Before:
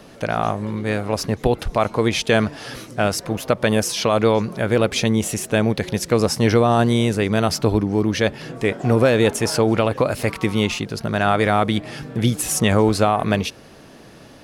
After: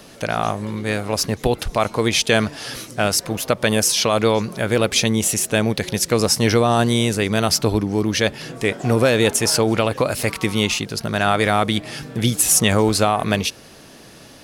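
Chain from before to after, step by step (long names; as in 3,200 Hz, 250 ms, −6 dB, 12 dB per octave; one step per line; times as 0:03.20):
high-shelf EQ 2,900 Hz +9.5 dB
level −1 dB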